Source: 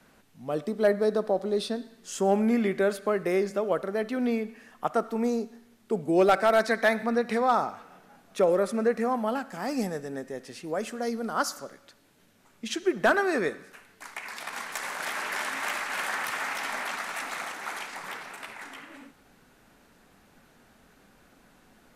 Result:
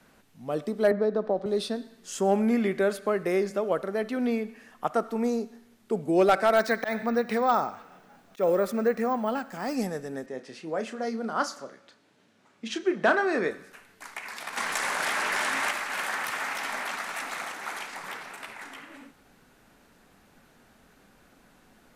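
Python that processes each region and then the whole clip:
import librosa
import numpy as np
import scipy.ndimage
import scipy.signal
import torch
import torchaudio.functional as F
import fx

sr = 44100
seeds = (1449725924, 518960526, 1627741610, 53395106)

y = fx.chain(x, sr, fx.spacing_loss(db_at_10k=23),
    fx.band_squash(depth_pct=70), at=(0.91, 1.46))
y = fx.chain(y, sr, fx.auto_swell(attack_ms=107.0),
    fx.resample_bad(factor=2, down='filtered', up='hold'), at=(6.57, 9.75))
y = fx.chain(y, sr, fx.highpass(hz=150.0, slope=12),
    fx.air_absorb(metres=71.0),
    fx.doubler(ms=31.0, db=-9.5), at=(10.26, 13.51))
y = fx.chain(y, sr, fx.lowpass(hz=12000.0, slope=24),
    fx.leveller(passes=1),
    fx.env_flatten(amount_pct=50), at=(14.57, 15.71))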